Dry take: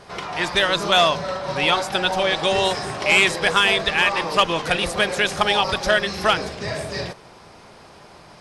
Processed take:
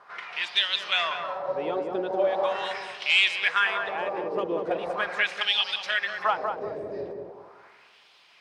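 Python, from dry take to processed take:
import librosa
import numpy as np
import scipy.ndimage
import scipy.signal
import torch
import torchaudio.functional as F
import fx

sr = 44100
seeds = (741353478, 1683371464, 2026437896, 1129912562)

y = fx.quant_dither(x, sr, seeds[0], bits=10, dither='triangular')
y = fx.wah_lfo(y, sr, hz=0.4, low_hz=380.0, high_hz=3200.0, q=2.7)
y = fx.echo_filtered(y, sr, ms=191, feedback_pct=34, hz=1000.0, wet_db=-3)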